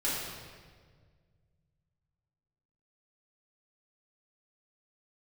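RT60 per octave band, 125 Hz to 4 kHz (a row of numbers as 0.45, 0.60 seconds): 3.1, 2.2, 1.9, 1.5, 1.4, 1.3 seconds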